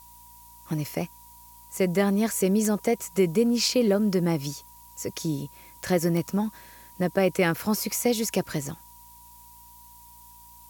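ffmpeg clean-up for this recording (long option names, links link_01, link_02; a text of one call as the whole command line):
ffmpeg -i in.wav -af "adeclick=threshold=4,bandreject=frequency=57.7:width_type=h:width=4,bandreject=frequency=115.4:width_type=h:width=4,bandreject=frequency=173.1:width_type=h:width=4,bandreject=frequency=230.8:width_type=h:width=4,bandreject=frequency=288.5:width_type=h:width=4,bandreject=frequency=960:width=30,afftdn=noise_reduction=20:noise_floor=-50" out.wav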